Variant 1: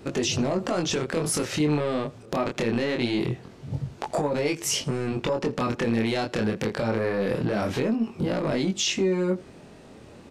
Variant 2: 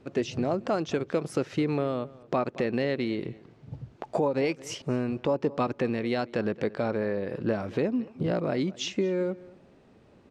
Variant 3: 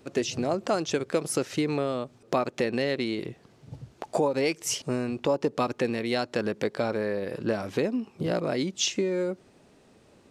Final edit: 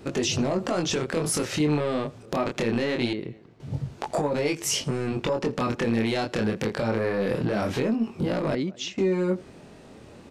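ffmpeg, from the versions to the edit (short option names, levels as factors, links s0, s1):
-filter_complex "[1:a]asplit=2[s0][s1];[0:a]asplit=3[s2][s3][s4];[s2]atrim=end=3.132[s5];[s0]atrim=start=3.128:end=3.602[s6];[s3]atrim=start=3.598:end=8.552[s7];[s1]atrim=start=8.548:end=8.982[s8];[s4]atrim=start=8.978[s9];[s5][s6]acrossfade=d=0.004:c1=hsin:c2=hsin[s10];[s10][s7]acrossfade=d=0.004:c1=hsin:c2=hsin[s11];[s11][s8]acrossfade=d=0.004:c1=hsin:c2=hsin[s12];[s12][s9]acrossfade=d=0.004:c1=hsin:c2=hsin"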